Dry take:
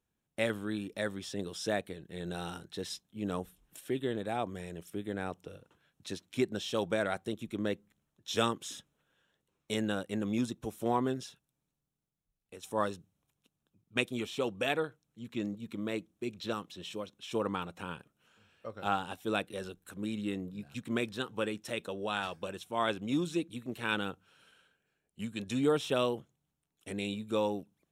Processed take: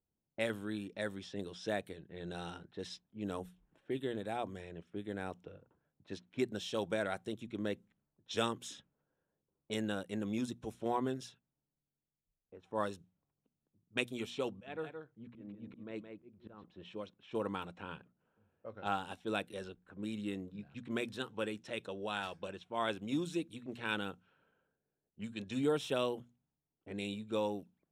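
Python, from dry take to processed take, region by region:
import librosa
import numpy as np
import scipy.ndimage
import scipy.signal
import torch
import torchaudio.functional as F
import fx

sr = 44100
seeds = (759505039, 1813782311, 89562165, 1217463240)

y = fx.chain(x, sr, fx.high_shelf(hz=2700.0, db=-7.0),
    fx.auto_swell(attack_ms=311.0),
    fx.echo_single(ms=169, db=-6.5), at=(14.5, 16.64))
y = fx.notch(y, sr, hz=1200.0, q=16.0)
y = fx.env_lowpass(y, sr, base_hz=730.0, full_db=-32.0)
y = fx.hum_notches(y, sr, base_hz=60, count=4)
y = y * librosa.db_to_amplitude(-4.0)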